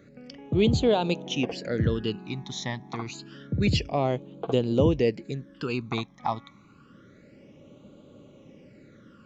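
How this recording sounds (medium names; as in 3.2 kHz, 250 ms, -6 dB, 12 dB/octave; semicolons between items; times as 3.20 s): phasing stages 12, 0.28 Hz, lowest notch 470–1800 Hz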